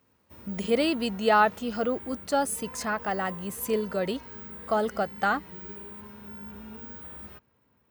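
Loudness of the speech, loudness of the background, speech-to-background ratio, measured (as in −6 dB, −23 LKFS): −28.0 LKFS, −42.5 LKFS, 14.5 dB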